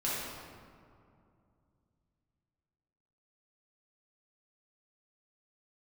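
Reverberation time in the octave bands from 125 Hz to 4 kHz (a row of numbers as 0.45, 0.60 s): 3.8, 3.2, 2.5, 2.3, 1.7, 1.1 s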